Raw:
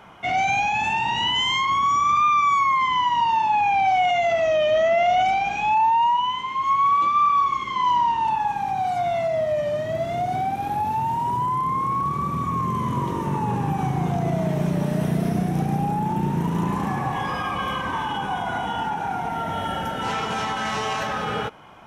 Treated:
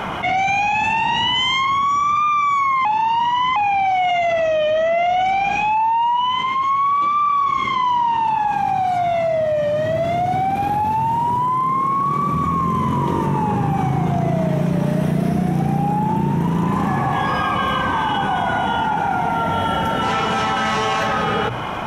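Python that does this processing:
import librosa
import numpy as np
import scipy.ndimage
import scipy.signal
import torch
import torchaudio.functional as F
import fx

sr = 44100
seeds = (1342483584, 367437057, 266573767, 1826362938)

y = fx.highpass(x, sr, hz=150.0, slope=12, at=(11.36, 12.32))
y = fx.edit(y, sr, fx.reverse_span(start_s=2.85, length_s=0.71), tone=tone)
y = fx.bass_treble(y, sr, bass_db=1, treble_db=-4)
y = fx.hum_notches(y, sr, base_hz=60, count=2)
y = fx.env_flatten(y, sr, amount_pct=70)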